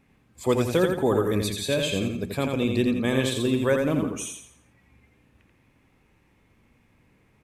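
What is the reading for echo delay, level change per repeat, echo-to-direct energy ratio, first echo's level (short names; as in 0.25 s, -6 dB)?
85 ms, -8.5 dB, -4.0 dB, -4.5 dB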